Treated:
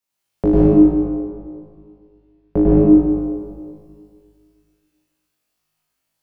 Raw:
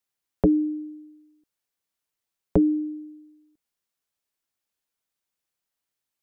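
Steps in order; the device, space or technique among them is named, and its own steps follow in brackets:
0:00.71–0:02.56: high-frequency loss of the air 290 metres
tunnel (flutter between parallel walls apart 3.3 metres, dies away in 0.76 s; convolution reverb RT60 2.0 s, pre-delay 94 ms, DRR −7 dB)
level −1 dB

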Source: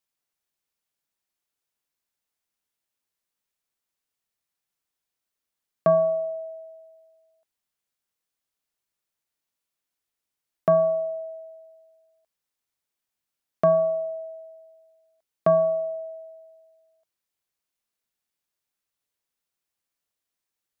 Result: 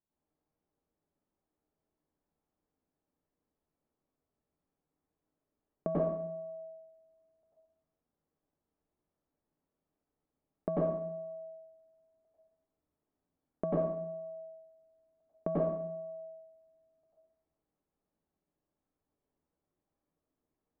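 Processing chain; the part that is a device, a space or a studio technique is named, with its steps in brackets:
television next door (downward compressor 5 to 1, threshold −36 dBFS, peak gain reduction 18 dB; low-pass filter 570 Hz 12 dB per octave; convolution reverb RT60 0.70 s, pre-delay 89 ms, DRR −8 dB)
notch filter 510 Hz, Q 12
level +4 dB

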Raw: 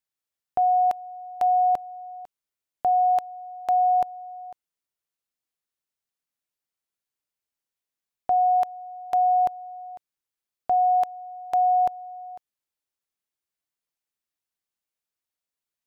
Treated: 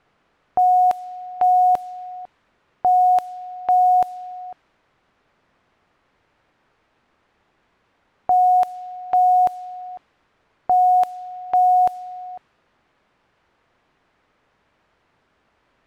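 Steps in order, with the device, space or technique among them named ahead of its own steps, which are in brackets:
cassette deck with a dynamic noise filter (white noise bed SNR 33 dB; low-pass that shuts in the quiet parts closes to 1,600 Hz, open at −19 dBFS)
level +5 dB

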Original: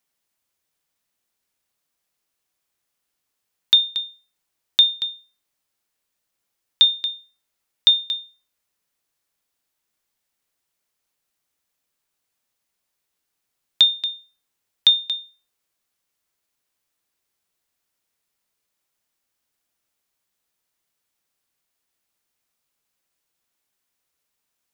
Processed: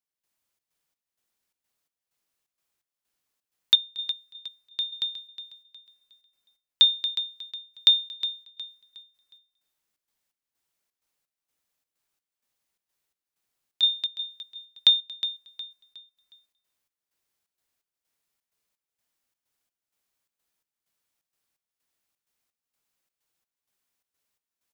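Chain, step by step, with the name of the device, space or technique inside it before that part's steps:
trance gate with a delay (gate pattern "..xxx.xx" 128 BPM −12 dB; repeating echo 363 ms, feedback 35%, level −12 dB)
level −3 dB

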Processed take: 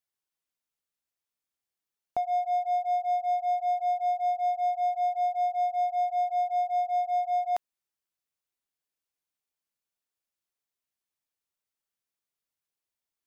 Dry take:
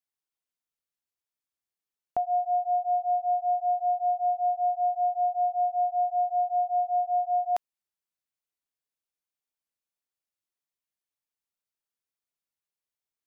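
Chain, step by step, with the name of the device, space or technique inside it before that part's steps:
parallel distortion (in parallel at −6 dB: hard clipping −34 dBFS, distortion −6 dB)
on the sum: level −2.5 dB

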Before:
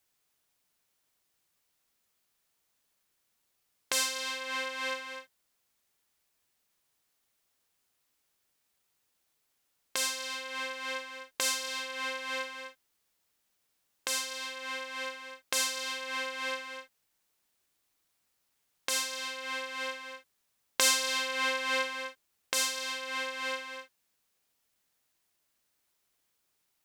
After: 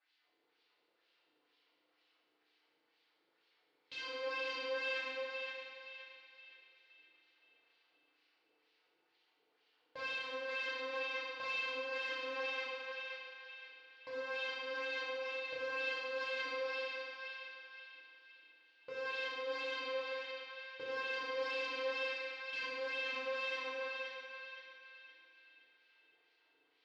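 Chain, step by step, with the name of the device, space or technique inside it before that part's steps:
0:20.01–0:21.20: low-pass filter 1,400 Hz 6 dB per octave
wah-wah guitar rig (LFO wah 2.1 Hz 380–3,300 Hz, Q 2.1; tube saturation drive 51 dB, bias 0.25; loudspeaker in its box 100–4,500 Hz, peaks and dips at 330 Hz +7 dB, 490 Hz +4 dB, 4,500 Hz +6 dB)
feedback echo with a band-pass in the loop 520 ms, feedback 48%, band-pass 2,700 Hz, level −3.5 dB
feedback delay network reverb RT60 2.6 s, low-frequency decay 0.75×, high-frequency decay 0.65×, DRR −7 dB
level +4.5 dB

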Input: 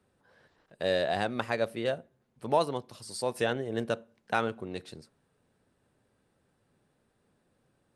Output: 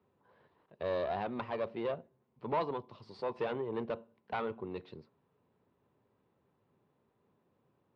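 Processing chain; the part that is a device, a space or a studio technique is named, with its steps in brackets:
guitar amplifier (tube saturation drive 27 dB, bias 0.45; bass and treble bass +2 dB, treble −12 dB; loudspeaker in its box 83–4,500 Hz, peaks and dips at 400 Hz +5 dB, 1,000 Hz +8 dB, 1,600 Hz −6 dB)
level −2.5 dB

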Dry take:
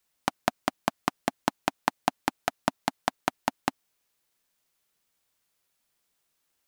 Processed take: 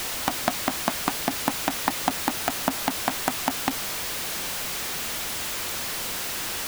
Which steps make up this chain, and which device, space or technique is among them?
early CD player with a faulty converter (converter with a step at zero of −22.5 dBFS; converter with an unsteady clock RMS 0.028 ms)

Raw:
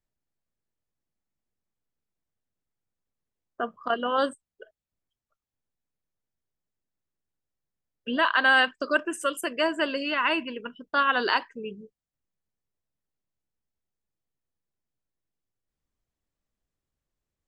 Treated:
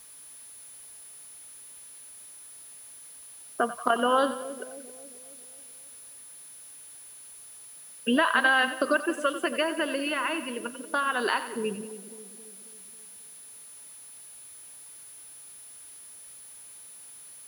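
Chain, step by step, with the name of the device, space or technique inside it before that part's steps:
medium wave at night (band-pass filter 110–3,700 Hz; downward compressor, threshold −27 dBFS, peak gain reduction 10.5 dB; amplitude tremolo 0.24 Hz, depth 51%; steady tone 10,000 Hz −56 dBFS; white noise bed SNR 23 dB)
echo with a time of its own for lows and highs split 610 Hz, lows 271 ms, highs 91 ms, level −12 dB
level +7.5 dB

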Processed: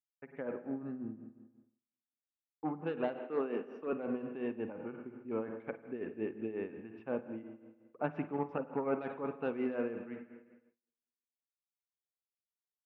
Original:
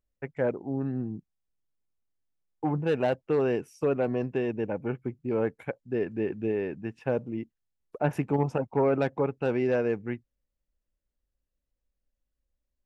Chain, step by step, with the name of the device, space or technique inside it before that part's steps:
combo amplifier with spring reverb and tremolo (spring reverb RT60 1.4 s, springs 45/51 ms, chirp 40 ms, DRR 7.5 dB; amplitude tremolo 5.6 Hz, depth 68%; loudspeaker in its box 100–3,500 Hz, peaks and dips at 130 Hz −9 dB, 250 Hz +5 dB, 1,200 Hz +8 dB)
noise gate with hold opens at −50 dBFS
0:03.19–0:03.93: high-pass filter 180 Hz 24 dB per octave
level −8 dB

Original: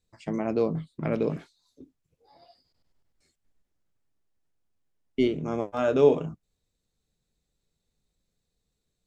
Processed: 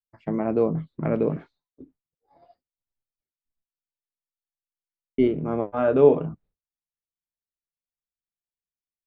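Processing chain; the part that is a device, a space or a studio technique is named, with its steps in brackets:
hearing-loss simulation (low-pass filter 1,700 Hz 12 dB per octave; downward expander −53 dBFS)
level +3.5 dB

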